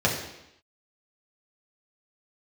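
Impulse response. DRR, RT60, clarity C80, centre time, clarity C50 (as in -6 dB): -4.5 dB, 0.85 s, 7.5 dB, 35 ms, 5.0 dB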